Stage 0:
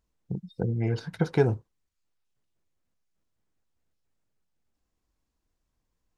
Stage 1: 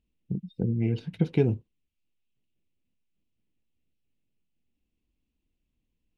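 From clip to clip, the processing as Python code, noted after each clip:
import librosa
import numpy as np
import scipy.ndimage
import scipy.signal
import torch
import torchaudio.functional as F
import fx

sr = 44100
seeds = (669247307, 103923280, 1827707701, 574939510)

y = fx.curve_eq(x, sr, hz=(130.0, 240.0, 810.0, 1500.0, 2700.0, 5000.0), db=(0, 5, -11, -15, 5, -11))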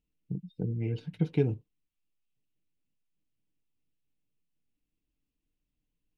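y = x + 0.43 * np.pad(x, (int(6.7 * sr / 1000.0), 0))[:len(x)]
y = y * 10.0 ** (-5.5 / 20.0)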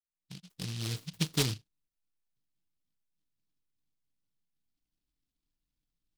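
y = fx.fade_in_head(x, sr, length_s=0.96)
y = fx.noise_mod_delay(y, sr, seeds[0], noise_hz=3800.0, depth_ms=0.44)
y = y * 10.0 ** (-3.0 / 20.0)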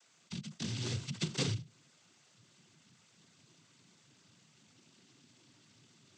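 y = fx.noise_vocoder(x, sr, seeds[1], bands=16)
y = fx.env_flatten(y, sr, amount_pct=50)
y = y * 10.0 ** (-5.5 / 20.0)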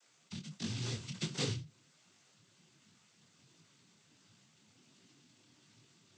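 y = fx.detune_double(x, sr, cents=48)
y = y * 10.0 ** (2.0 / 20.0)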